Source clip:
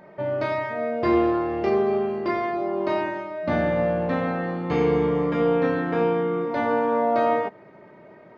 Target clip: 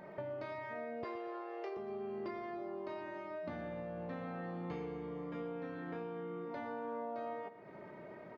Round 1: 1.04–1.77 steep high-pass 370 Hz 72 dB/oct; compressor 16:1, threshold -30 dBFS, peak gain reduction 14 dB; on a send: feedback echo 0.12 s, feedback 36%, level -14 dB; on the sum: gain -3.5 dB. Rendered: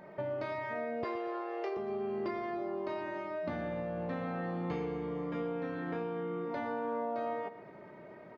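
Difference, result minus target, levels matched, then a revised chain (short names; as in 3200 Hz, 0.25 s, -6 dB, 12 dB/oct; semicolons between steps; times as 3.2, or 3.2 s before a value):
compressor: peak gain reduction -6 dB
1.04–1.77 steep high-pass 370 Hz 72 dB/oct; compressor 16:1, threshold -36.5 dBFS, peak gain reduction 20 dB; on a send: feedback echo 0.12 s, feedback 36%, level -14 dB; on the sum: gain -3.5 dB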